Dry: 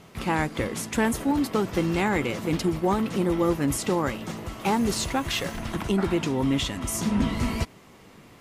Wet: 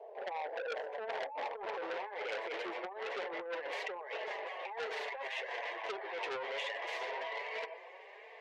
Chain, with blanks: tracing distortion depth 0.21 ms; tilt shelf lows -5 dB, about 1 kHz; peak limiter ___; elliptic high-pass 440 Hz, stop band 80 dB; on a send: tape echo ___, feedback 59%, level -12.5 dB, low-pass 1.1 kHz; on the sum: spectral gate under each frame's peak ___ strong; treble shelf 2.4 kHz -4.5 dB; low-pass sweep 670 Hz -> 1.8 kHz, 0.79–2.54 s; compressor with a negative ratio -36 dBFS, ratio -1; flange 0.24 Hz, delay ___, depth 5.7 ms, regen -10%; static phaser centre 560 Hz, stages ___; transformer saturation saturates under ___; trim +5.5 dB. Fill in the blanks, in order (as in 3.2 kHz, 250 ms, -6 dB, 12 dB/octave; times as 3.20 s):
-18.5 dBFS, 118 ms, -20 dB, 4.4 ms, 4, 2.3 kHz